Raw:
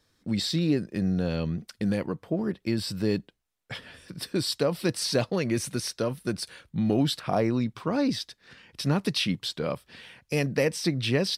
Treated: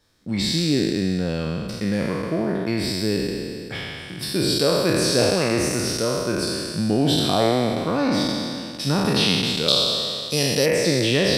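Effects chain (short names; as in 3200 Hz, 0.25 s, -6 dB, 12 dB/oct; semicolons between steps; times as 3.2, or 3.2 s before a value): spectral trails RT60 2.39 s; 9.68–10.66 resonant high shelf 2900 Hz +8 dB, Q 3; gain +1.5 dB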